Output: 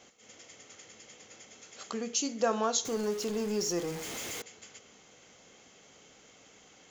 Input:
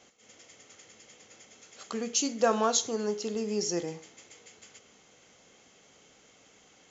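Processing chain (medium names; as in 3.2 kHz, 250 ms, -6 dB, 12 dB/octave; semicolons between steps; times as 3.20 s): 2.85–4.42 s: jump at every zero crossing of -35 dBFS; in parallel at +0.5 dB: compression, threshold -41 dBFS, peak gain reduction 20 dB; on the sum: trim -4.5 dB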